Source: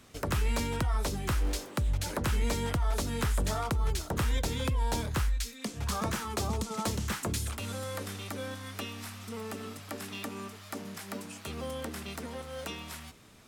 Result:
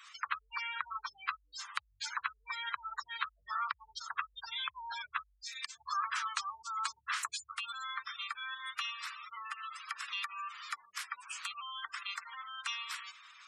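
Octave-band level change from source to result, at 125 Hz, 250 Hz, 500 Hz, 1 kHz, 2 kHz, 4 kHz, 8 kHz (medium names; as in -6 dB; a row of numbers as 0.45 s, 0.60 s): under -40 dB, under -40 dB, under -35 dB, 0.0 dB, +1.5 dB, -0.5 dB, -8.5 dB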